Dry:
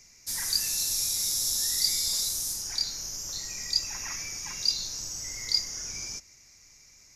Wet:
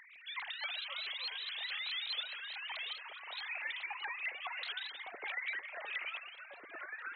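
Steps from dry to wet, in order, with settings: sine-wave speech; HPF 220 Hz 6 dB/oct; bell 1500 Hz -14 dB 0.64 oct; notch 2700 Hz, Q 21; compressor 2.5:1, threshold -43 dBFS, peak gain reduction 13.5 dB; echoes that change speed 0.155 s, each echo -4 st, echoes 3, each echo -6 dB; shaped vibrato saw up 4.7 Hz, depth 250 cents

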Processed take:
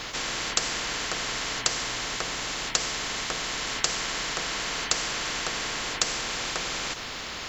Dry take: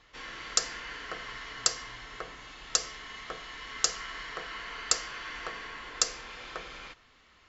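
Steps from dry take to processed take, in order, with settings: spectral compressor 4:1; gain +1.5 dB

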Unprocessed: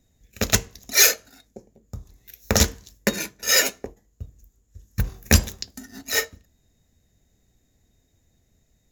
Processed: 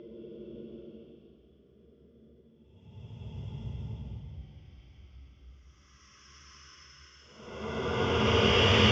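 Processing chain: inharmonic rescaling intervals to 78%; Paulstretch 8.3×, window 0.25 s, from 1.51; air absorption 200 m

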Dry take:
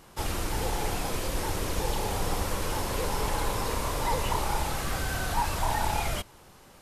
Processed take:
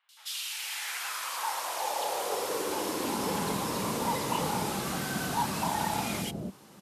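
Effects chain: high-pass sweep 3500 Hz -> 190 Hz, 0.21–3.08; three bands offset in time mids, highs, lows 90/280 ms, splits 540/1800 Hz

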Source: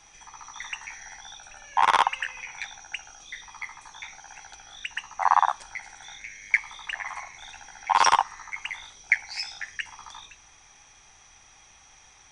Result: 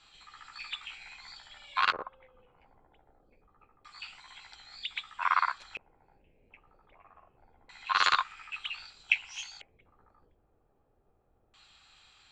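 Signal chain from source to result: formant shift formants +4 st; LFO low-pass square 0.26 Hz 490–4000 Hz; gain -7.5 dB

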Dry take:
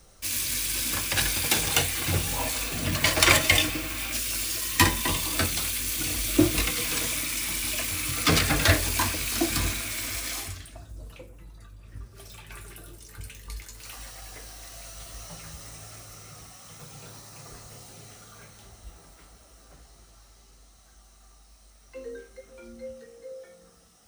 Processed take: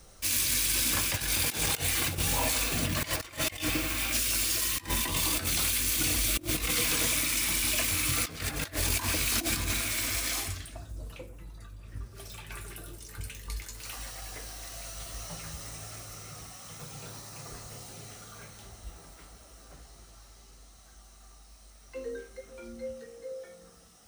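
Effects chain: negative-ratio compressor -28 dBFS, ratio -0.5; gain -1 dB

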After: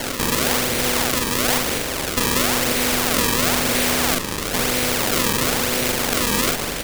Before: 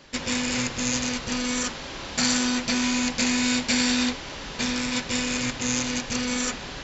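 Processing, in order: stepped spectrum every 0.2 s; LPF 5700 Hz 24 dB/oct; bell 2100 Hz +10.5 dB 0.88 oct; added harmonics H 6 -12 dB, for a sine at -11 dBFS; resonant low shelf 720 Hz +11 dB, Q 3; decimation with a swept rate 35×, swing 160% 0.99 Hz; doubler 43 ms -4 dB; spectral compressor 2:1

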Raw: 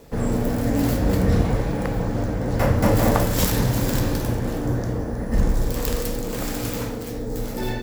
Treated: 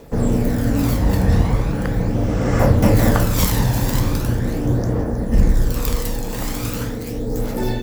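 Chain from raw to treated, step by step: phaser 0.4 Hz, delay 1.2 ms, feedback 38%; spectral repair 2.2–2.58, 1100–8600 Hz both; gain +1.5 dB

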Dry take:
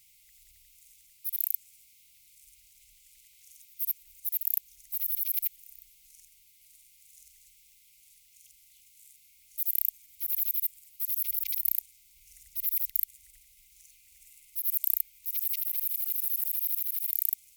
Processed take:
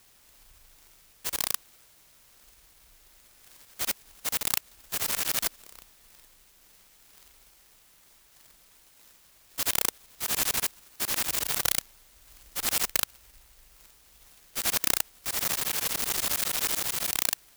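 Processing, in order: fixed phaser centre 2800 Hz, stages 6; spring tank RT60 3.8 s, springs 39 ms, chirp 50 ms, DRR 7 dB; clock jitter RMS 0.14 ms; gain +7 dB

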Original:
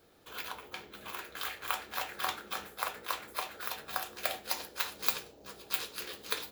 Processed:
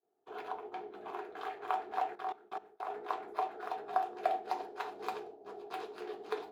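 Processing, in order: 2.15–2.9 level quantiser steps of 20 dB; expander -50 dBFS; double band-pass 540 Hz, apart 0.8 oct; gain +13 dB

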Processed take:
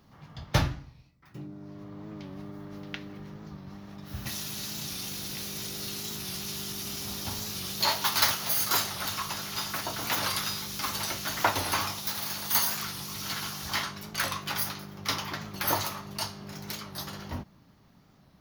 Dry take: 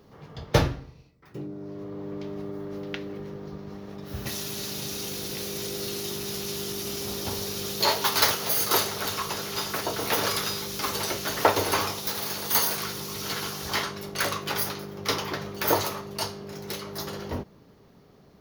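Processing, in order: 15.55–16.85 upward compressor, threshold -30 dBFS; bell 440 Hz -14 dB 0.66 oct; record warp 45 rpm, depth 100 cents; gain -2 dB

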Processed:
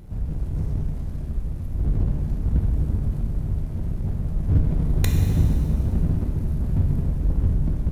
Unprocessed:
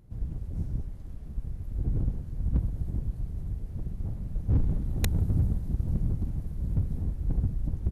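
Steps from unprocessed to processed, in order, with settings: power-law curve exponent 0.7; shimmer reverb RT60 1.8 s, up +7 st, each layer -8 dB, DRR 2 dB; gain +2 dB

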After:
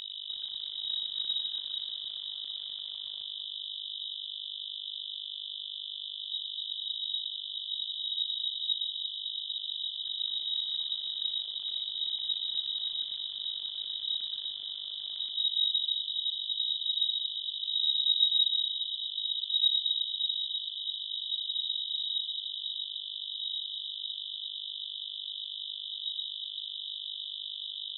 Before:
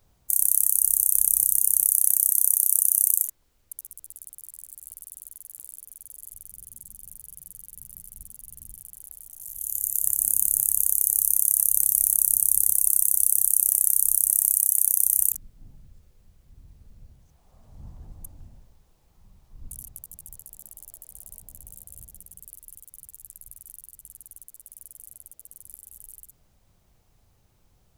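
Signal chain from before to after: tilt -3.5 dB/oct; in parallel at -8 dB: wavefolder -24.5 dBFS; on the sum: buzz 50 Hz, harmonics 16, -36 dBFS -1 dB/oct; on a send: echo with dull and thin repeats by turns 0.116 s, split 1900 Hz, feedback 77%, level -5 dB; on the sum: inverted band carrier 3800 Hz; gain -7 dB

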